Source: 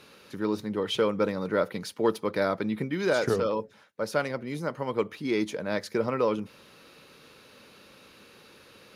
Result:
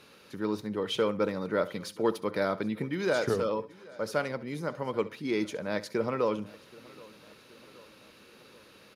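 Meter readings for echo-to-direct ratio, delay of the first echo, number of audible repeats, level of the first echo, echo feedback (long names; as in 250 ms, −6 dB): −16.0 dB, 67 ms, 5, −17.5 dB, repeats not evenly spaced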